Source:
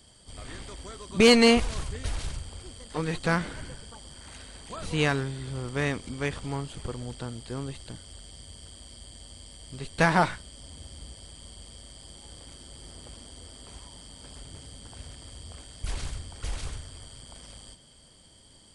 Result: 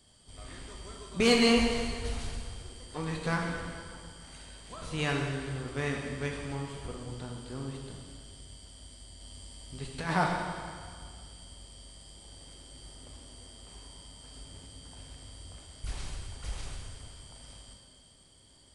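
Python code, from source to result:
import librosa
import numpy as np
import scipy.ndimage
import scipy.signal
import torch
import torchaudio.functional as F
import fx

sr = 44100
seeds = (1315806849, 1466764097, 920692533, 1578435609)

y = fx.over_compress(x, sr, threshold_db=-24.0, ratio=-0.5, at=(9.2, 10.13), fade=0.02)
y = fx.rev_plate(y, sr, seeds[0], rt60_s=1.9, hf_ratio=0.9, predelay_ms=0, drr_db=0.0)
y = F.gain(torch.from_numpy(y), -7.0).numpy()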